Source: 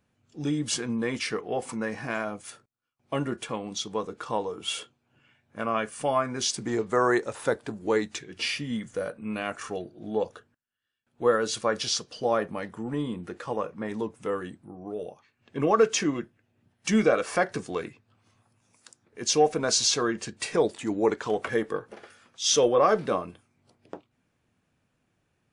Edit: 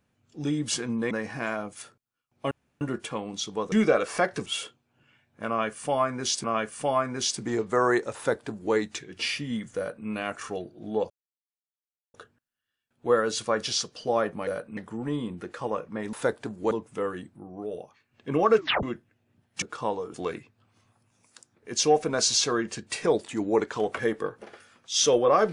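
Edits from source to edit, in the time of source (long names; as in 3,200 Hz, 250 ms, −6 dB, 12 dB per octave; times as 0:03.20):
0:01.11–0:01.79: remove
0:03.19: splice in room tone 0.30 s
0:04.10–0:04.62: swap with 0:16.90–0:17.64
0:05.64–0:06.60: repeat, 2 plays
0:07.36–0:07.94: duplicate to 0:13.99
0:08.97–0:09.27: duplicate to 0:12.63
0:10.30: splice in silence 1.04 s
0:15.85: tape stop 0.26 s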